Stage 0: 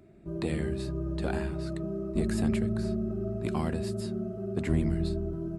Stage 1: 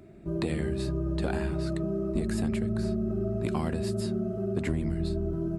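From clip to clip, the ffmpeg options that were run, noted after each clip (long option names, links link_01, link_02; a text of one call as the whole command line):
ffmpeg -i in.wav -af "acompressor=threshold=-30dB:ratio=6,volume=5dB" out.wav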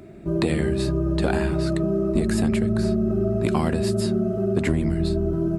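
ffmpeg -i in.wav -af "lowshelf=frequency=130:gain=-3.5,volume=8.5dB" out.wav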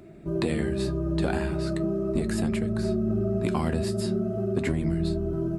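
ffmpeg -i in.wav -af "flanger=delay=5.6:depth=6.9:regen=71:speed=0.4:shape=triangular" out.wav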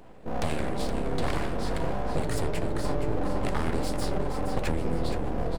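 ffmpeg -i in.wav -filter_complex "[0:a]aeval=exprs='abs(val(0))':channel_layout=same,asplit=5[link_01][link_02][link_03][link_04][link_05];[link_02]adelay=470,afreqshift=-46,volume=-8.5dB[link_06];[link_03]adelay=940,afreqshift=-92,volume=-17.6dB[link_07];[link_04]adelay=1410,afreqshift=-138,volume=-26.7dB[link_08];[link_05]adelay=1880,afreqshift=-184,volume=-35.9dB[link_09];[link_01][link_06][link_07][link_08][link_09]amix=inputs=5:normalize=0" out.wav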